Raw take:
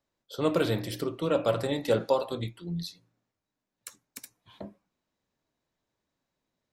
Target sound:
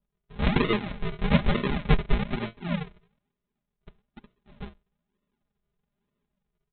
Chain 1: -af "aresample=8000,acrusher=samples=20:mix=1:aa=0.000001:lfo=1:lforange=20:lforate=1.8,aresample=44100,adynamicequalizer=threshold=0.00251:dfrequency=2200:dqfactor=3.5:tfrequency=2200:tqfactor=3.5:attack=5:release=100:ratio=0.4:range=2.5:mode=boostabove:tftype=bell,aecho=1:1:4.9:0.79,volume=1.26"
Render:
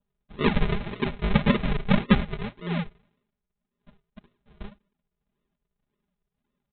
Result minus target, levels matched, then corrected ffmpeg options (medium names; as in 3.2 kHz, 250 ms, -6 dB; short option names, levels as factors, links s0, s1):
decimation with a swept rate: distortion +5 dB
-af "aresample=8000,acrusher=samples=20:mix=1:aa=0.000001:lfo=1:lforange=20:lforate=1.1,aresample=44100,adynamicequalizer=threshold=0.00251:dfrequency=2200:dqfactor=3.5:tfrequency=2200:tqfactor=3.5:attack=5:release=100:ratio=0.4:range=2.5:mode=boostabove:tftype=bell,aecho=1:1:4.9:0.79,volume=1.26"